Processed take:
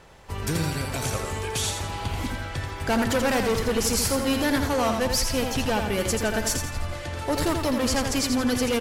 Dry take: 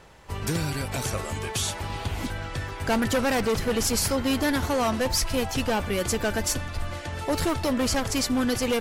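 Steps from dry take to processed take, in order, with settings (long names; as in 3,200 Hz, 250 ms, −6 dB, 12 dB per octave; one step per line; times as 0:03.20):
repeating echo 84 ms, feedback 41%, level −6 dB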